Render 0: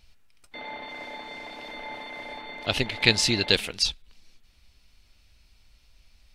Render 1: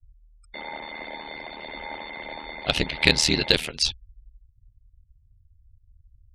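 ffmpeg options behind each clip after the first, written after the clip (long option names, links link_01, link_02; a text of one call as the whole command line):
ffmpeg -i in.wav -af "aeval=exprs='val(0)*sin(2*PI*39*n/s)':channel_layout=same,afftfilt=real='re*gte(hypot(re,im),0.00316)':imag='im*gte(hypot(re,im),0.00316)':win_size=1024:overlap=0.75,acontrast=22" out.wav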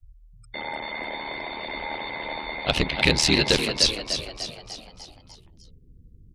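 ffmpeg -i in.wav -filter_complex "[0:a]acrossover=split=1500[link_01][link_02];[link_01]volume=19dB,asoftclip=hard,volume=-19dB[link_03];[link_02]alimiter=limit=-9dB:level=0:latency=1:release=343[link_04];[link_03][link_04]amix=inputs=2:normalize=0,asplit=7[link_05][link_06][link_07][link_08][link_09][link_10][link_11];[link_06]adelay=298,afreqshift=74,volume=-8dB[link_12];[link_07]adelay=596,afreqshift=148,volume=-13.5dB[link_13];[link_08]adelay=894,afreqshift=222,volume=-19dB[link_14];[link_09]adelay=1192,afreqshift=296,volume=-24.5dB[link_15];[link_10]adelay=1490,afreqshift=370,volume=-30.1dB[link_16];[link_11]adelay=1788,afreqshift=444,volume=-35.6dB[link_17];[link_05][link_12][link_13][link_14][link_15][link_16][link_17]amix=inputs=7:normalize=0,volume=3.5dB" out.wav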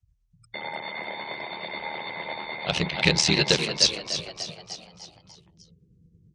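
ffmpeg -i in.wav -af "highpass=110,equalizer=frequency=170:width_type=q:width=4:gain=8,equalizer=frequency=260:width_type=q:width=4:gain=-9,equalizer=frequency=6000:width_type=q:width=4:gain=4,lowpass=frequency=8400:width=0.5412,lowpass=frequency=8400:width=1.3066,tremolo=f=9.1:d=0.37" out.wav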